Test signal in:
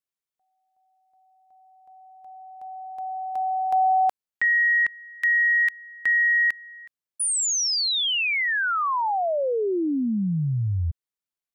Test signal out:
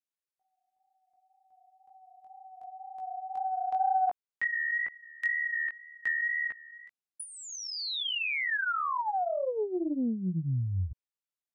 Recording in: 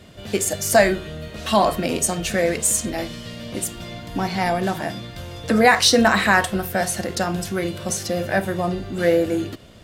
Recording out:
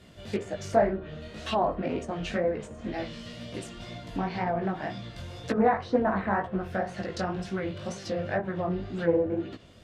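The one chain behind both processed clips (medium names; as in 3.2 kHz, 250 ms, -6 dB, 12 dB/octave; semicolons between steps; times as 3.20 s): low-pass that closes with the level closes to 1 kHz, closed at -16 dBFS; chorus 2 Hz, delay 15.5 ms, depth 6.8 ms; loudspeaker Doppler distortion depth 0.25 ms; trim -4 dB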